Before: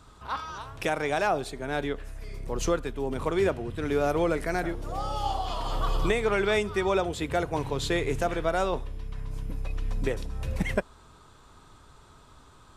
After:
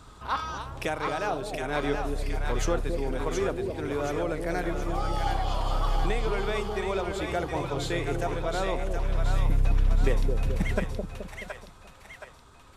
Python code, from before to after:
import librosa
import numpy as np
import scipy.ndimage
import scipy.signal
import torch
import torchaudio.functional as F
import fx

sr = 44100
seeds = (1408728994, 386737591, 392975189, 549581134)

y = fx.rider(x, sr, range_db=10, speed_s=0.5)
y = fx.echo_split(y, sr, split_hz=670.0, low_ms=214, high_ms=722, feedback_pct=52, wet_db=-4)
y = y * librosa.db_to_amplitude(-3.0)